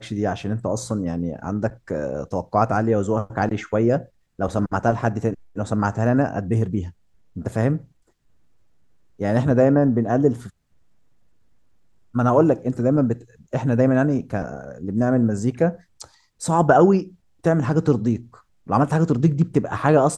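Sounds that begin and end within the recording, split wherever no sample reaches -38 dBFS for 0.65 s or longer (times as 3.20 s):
9.19–10.49 s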